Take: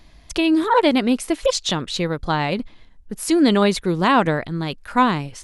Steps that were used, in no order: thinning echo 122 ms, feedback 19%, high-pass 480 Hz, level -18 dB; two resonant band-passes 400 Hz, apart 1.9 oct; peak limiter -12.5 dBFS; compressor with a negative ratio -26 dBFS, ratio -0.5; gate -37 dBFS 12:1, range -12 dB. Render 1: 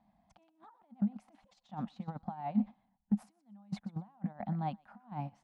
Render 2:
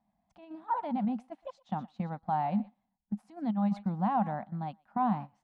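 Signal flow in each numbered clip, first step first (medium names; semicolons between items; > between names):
compressor with a negative ratio > thinning echo > peak limiter > two resonant band-passes > gate; thinning echo > peak limiter > two resonant band-passes > compressor with a negative ratio > gate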